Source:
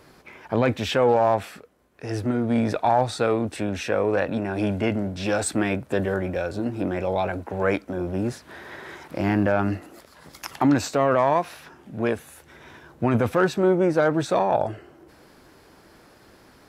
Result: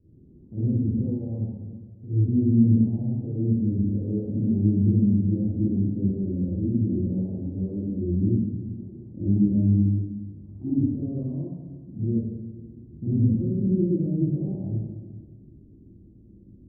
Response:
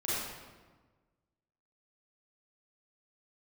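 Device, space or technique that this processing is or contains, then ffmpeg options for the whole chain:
club heard from the street: -filter_complex "[0:a]alimiter=limit=-16dB:level=0:latency=1,lowpass=f=250:w=0.5412,lowpass=f=250:w=1.3066[a];[1:a]atrim=start_sample=2205[b];[a][b]afir=irnorm=-1:irlink=0"

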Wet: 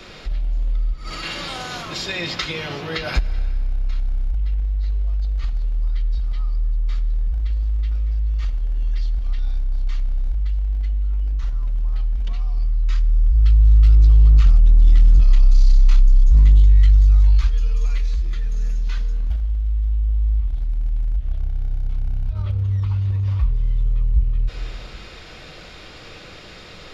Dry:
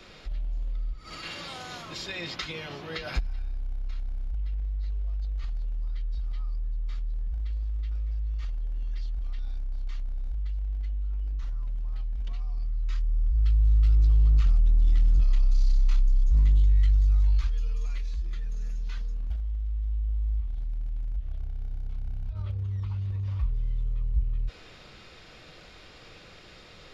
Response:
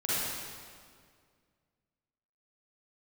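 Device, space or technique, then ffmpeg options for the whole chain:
ducked reverb: -filter_complex "[0:a]asplit=3[a][b][c];[1:a]atrim=start_sample=2205[d];[b][d]afir=irnorm=-1:irlink=0[e];[c]apad=whole_len=1187961[f];[e][f]sidechaincompress=threshold=-30dB:ratio=8:attack=5.9:release=278,volume=-18.5dB[g];[a][g]amix=inputs=2:normalize=0,volume=8.5dB"

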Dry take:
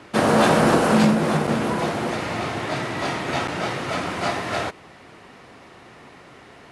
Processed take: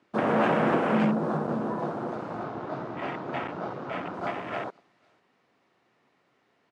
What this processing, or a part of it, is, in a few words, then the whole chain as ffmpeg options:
over-cleaned archive recording: -filter_complex "[0:a]asettb=1/sr,asplit=3[a][b][c];[a]atrim=end=2.434[d];[b]atrim=start=2.43:end=4.14,asetpts=PTS-STARTPTS,afade=t=in:d=0.004:c=qsin,afade=t=out:st=1.706:d=0.004:c=qsin,lowpass=6.1k[e];[c]atrim=start=4.136[f];[d][e]acrossfade=d=0.004:c1=hsin:c2=qsin[g];[g][f]acrossfade=d=0.004:c1=qsin:c2=hsin,highpass=140,lowpass=7.3k,aecho=1:1:497:0.119,afwtdn=0.0501,volume=-6.5dB"

